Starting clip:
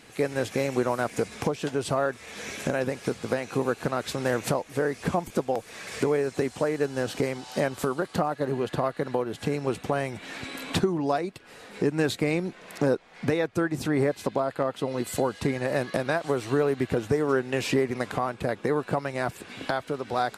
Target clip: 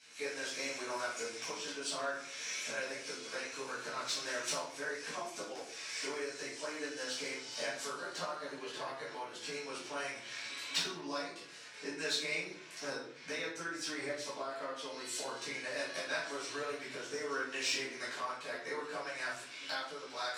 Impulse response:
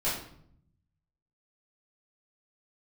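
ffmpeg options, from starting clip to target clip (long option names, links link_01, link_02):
-filter_complex "[0:a]flanger=delay=8.5:depth=3.1:regen=36:speed=0.78:shape=sinusoidal,aeval=exprs='val(0)+0.00316*(sin(2*PI*60*n/s)+sin(2*PI*2*60*n/s)/2+sin(2*PI*3*60*n/s)/3+sin(2*PI*4*60*n/s)/4+sin(2*PI*5*60*n/s)/5)':channel_layout=same,highpass=frequency=130:width=0.5412,highpass=frequency=130:width=1.3066,equalizer=frequency=190:width_type=q:width=4:gain=-8,equalizer=frequency=750:width_type=q:width=4:gain=-7,equalizer=frequency=5700:width_type=q:width=4:gain=8,lowpass=frequency=9100:width=0.5412,lowpass=frequency=9100:width=1.3066,asplit=2[link_01][link_02];[link_02]adynamicsmooth=sensitivity=1.5:basefreq=4700,volume=3dB[link_03];[link_01][link_03]amix=inputs=2:normalize=0,aderivative[link_04];[1:a]atrim=start_sample=2205[link_05];[link_04][link_05]afir=irnorm=-1:irlink=0,areverse,acompressor=mode=upward:threshold=-41dB:ratio=2.5,areverse,volume=-4.5dB"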